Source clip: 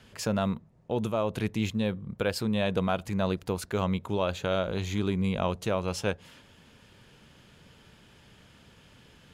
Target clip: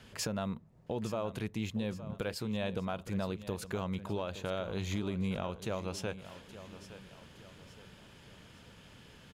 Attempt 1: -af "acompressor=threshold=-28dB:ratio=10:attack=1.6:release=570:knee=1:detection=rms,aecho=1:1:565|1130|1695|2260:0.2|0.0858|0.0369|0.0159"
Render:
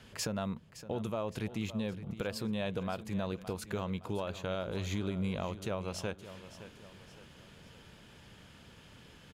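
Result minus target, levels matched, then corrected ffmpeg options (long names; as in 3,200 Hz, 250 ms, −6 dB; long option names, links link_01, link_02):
echo 301 ms early
-af "acompressor=threshold=-28dB:ratio=10:attack=1.6:release=570:knee=1:detection=rms,aecho=1:1:866|1732|2598|3464:0.2|0.0858|0.0369|0.0159"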